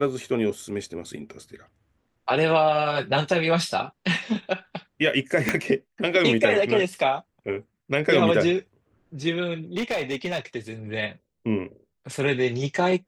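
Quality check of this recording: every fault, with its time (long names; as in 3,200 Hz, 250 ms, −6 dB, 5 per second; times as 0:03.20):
0:05.49: click −7 dBFS
0:09.77–0:10.39: clipping −22 dBFS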